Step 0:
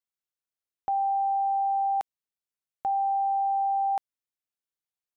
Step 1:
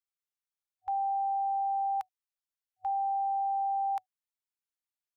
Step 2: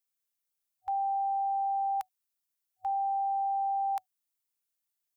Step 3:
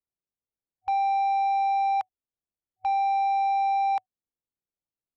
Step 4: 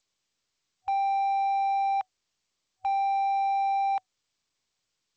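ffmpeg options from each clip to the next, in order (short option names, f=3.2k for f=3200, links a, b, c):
-af "afftfilt=real='re*(1-between(b*sr/4096,100,750))':imag='im*(1-between(b*sr/4096,100,750))':win_size=4096:overlap=0.75,volume=-4.5dB"
-af "crystalizer=i=1.5:c=0"
-af "adynamicsmooth=sensitivity=4:basefreq=600,volume=6.5dB"
-af "volume=-2dB" -ar 16000 -c:a g722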